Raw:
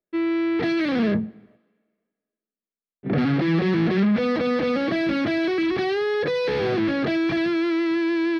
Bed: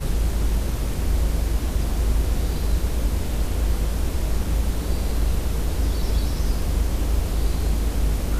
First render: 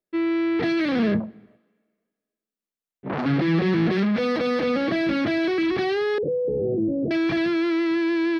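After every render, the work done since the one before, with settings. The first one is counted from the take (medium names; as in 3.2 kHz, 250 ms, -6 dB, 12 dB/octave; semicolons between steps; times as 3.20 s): 1.20–3.26 s: transformer saturation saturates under 1.2 kHz; 3.92–4.64 s: tone controls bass -4 dB, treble +4 dB; 6.18–7.11 s: elliptic low-pass 550 Hz, stop band 80 dB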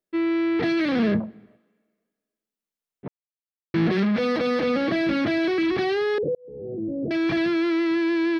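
3.08–3.74 s: mute; 6.35–7.30 s: fade in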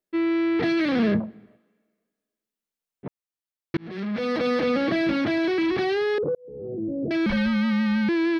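3.77–4.46 s: fade in; 5.11–6.68 s: transformer saturation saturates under 340 Hz; 7.26–8.09 s: frequency shift -120 Hz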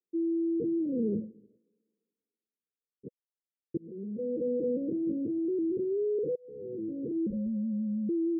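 steep low-pass 510 Hz 96 dB/octave; tilt EQ +4 dB/octave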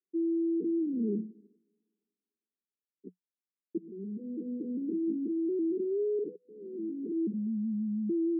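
Chebyshev band-pass 180–420 Hz, order 4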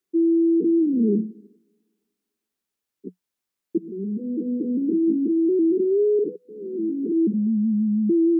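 trim +11 dB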